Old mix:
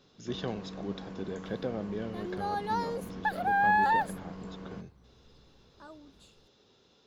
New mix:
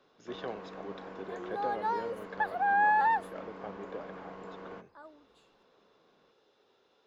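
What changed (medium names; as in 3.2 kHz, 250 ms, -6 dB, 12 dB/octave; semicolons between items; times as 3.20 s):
first sound +4.5 dB; second sound: entry -0.85 s; master: add three-band isolator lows -17 dB, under 350 Hz, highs -12 dB, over 2.6 kHz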